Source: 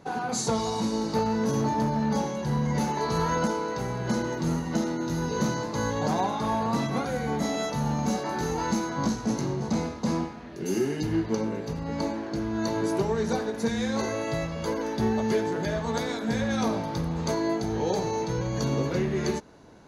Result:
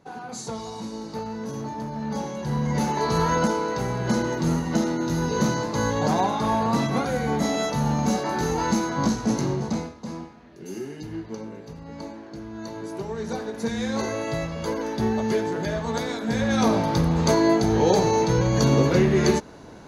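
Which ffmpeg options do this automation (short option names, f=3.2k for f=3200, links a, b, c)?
-af "volume=19.5dB,afade=t=in:st=1.88:d=1.18:silence=0.298538,afade=t=out:st=9.54:d=0.4:silence=0.266073,afade=t=in:st=12.91:d=1.06:silence=0.354813,afade=t=in:st=16.27:d=0.61:silence=0.473151"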